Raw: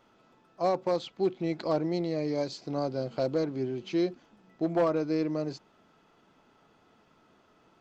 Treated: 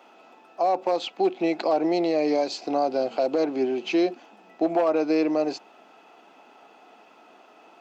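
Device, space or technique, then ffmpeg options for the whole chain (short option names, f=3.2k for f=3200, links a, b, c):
laptop speaker: -af "highpass=f=250:w=0.5412,highpass=f=250:w=1.3066,equalizer=f=750:t=o:w=0.46:g=10.5,equalizer=f=2.6k:t=o:w=0.26:g=9,alimiter=limit=-22dB:level=0:latency=1:release=91,volume=8dB"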